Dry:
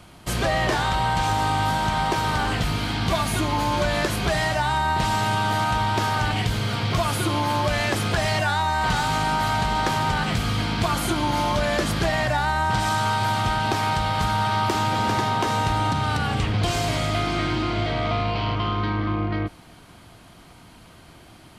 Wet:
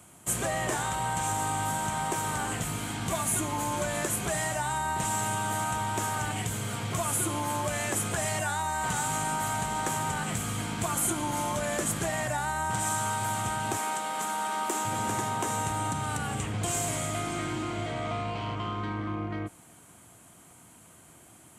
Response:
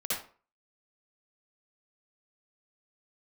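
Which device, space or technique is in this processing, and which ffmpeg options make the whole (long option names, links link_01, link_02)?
budget condenser microphone: -filter_complex "[0:a]asettb=1/sr,asplit=3[link_01][link_02][link_03];[link_01]atrim=end=13.774[link_04];[link_02]atrim=start=13.77:end=14.85,asetpts=PTS-STARTPTS,afade=type=in:duration=0.004:curve=qsin,afade=type=out:start_time=1.076:duration=0.004:curve=qsin,highpass=frequency=230:width=0.5412,highpass=frequency=230:width=1.3066[link_05];[link_03]atrim=start=14.846[link_06];[link_04][link_05]acrossfade=duration=0.004:curve1=hsin:curve2=qsin[link_07];[link_07][link_06]acrossfade=duration=0.004:curve1=qsin:curve2=hsin,highpass=94,highshelf=frequency=6000:width_type=q:width=3:gain=9,volume=-7.5dB"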